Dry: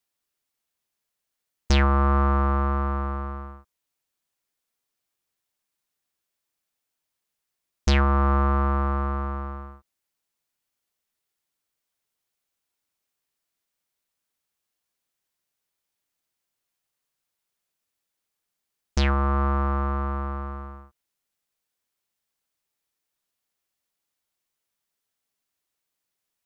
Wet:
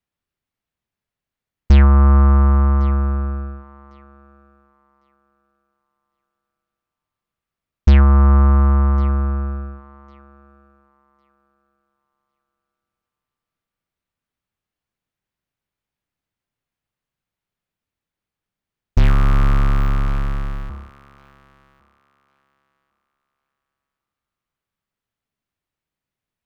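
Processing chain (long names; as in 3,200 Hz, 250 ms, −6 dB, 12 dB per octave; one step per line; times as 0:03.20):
0:18.98–0:20.70: sub-harmonics by changed cycles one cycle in 2, inverted
bass and treble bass +11 dB, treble −12 dB
feedback echo with a high-pass in the loop 1,103 ms, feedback 21%, high-pass 360 Hz, level −18 dB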